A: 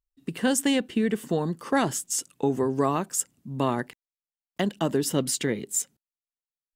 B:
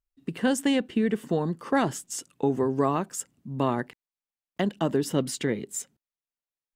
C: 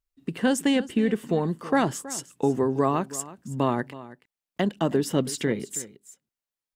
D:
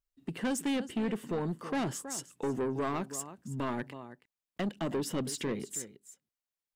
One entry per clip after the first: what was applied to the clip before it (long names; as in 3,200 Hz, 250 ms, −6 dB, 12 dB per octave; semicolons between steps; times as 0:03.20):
high-shelf EQ 4,400 Hz −9 dB
single-tap delay 323 ms −17 dB; level +1.5 dB
soft clipping −22.5 dBFS, distortion −9 dB; level −4.5 dB